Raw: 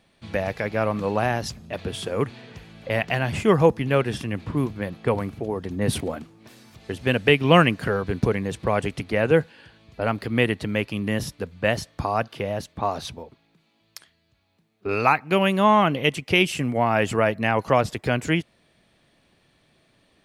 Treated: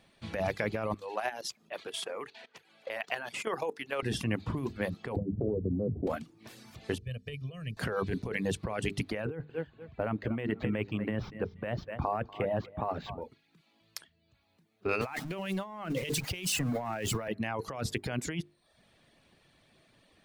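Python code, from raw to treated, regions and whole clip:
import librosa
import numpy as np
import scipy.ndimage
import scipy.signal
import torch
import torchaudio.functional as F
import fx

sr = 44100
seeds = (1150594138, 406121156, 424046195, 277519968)

y = fx.chain(x, sr, fx.highpass(hz=500.0, slope=12),
    fx.level_steps(step_db=12), at=(0.94, 4.03))
y = fx.chain(y, sr, fx.steep_lowpass(hz=570.0, slope=36),
    fx.band_squash(depth_pct=100), at=(5.16, 6.07))
y = fx.chain(y, sr, fx.tone_stack(knobs='10-0-1'),
    fx.comb(ms=1.7, depth=0.69),
    fx.over_compress(threshold_db=-35.0, ratio=-0.5), at=(6.98, 7.77))
y = fx.chain(y, sr, fx.resample_bad(factor=4, down='none', up='hold'),
    fx.air_absorb(metres=380.0),
    fx.echo_feedback(ms=240, feedback_pct=23, wet_db=-15.0), at=(9.25, 13.22))
y = fx.chain(y, sr, fx.zero_step(step_db=-28.0),
    fx.band_widen(depth_pct=70), at=(15.01, 17.28))
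y = fx.hum_notches(y, sr, base_hz=50, count=9)
y = fx.dereverb_blind(y, sr, rt60_s=0.52)
y = fx.over_compress(y, sr, threshold_db=-28.0, ratio=-1.0)
y = F.gain(torch.from_numpy(y), -5.0).numpy()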